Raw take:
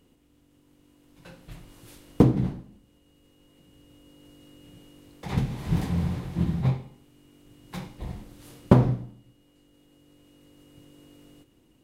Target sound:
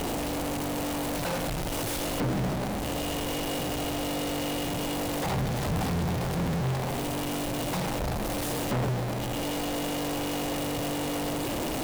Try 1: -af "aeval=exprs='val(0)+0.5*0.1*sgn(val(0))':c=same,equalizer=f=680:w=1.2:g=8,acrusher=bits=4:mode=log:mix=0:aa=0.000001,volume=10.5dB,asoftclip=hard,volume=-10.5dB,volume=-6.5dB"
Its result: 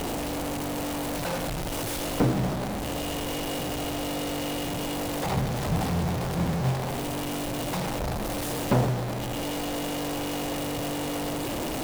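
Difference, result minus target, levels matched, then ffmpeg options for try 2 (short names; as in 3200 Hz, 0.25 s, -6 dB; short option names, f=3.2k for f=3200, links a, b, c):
overloaded stage: distortion -6 dB
-af "aeval=exprs='val(0)+0.5*0.1*sgn(val(0))':c=same,equalizer=f=680:w=1.2:g=8,acrusher=bits=4:mode=log:mix=0:aa=0.000001,volume=19dB,asoftclip=hard,volume=-19dB,volume=-6.5dB"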